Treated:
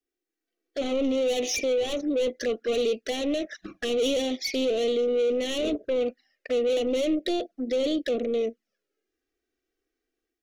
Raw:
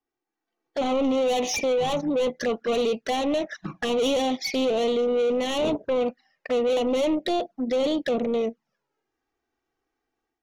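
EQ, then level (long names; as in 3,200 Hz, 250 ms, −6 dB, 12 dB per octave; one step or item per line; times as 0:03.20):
phaser with its sweep stopped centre 380 Hz, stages 4
0.0 dB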